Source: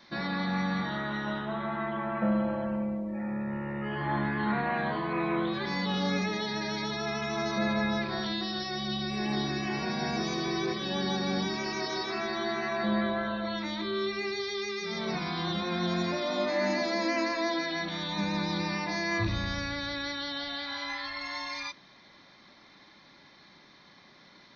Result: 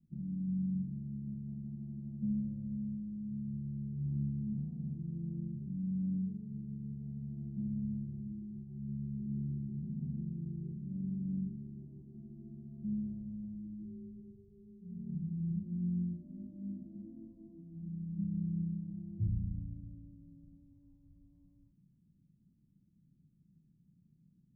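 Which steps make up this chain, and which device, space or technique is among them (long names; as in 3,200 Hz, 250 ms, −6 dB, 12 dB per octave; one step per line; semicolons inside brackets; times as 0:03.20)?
the neighbour's flat through the wall (low-pass filter 180 Hz 24 dB per octave; parametric band 160 Hz +5 dB 0.44 octaves)
level −1.5 dB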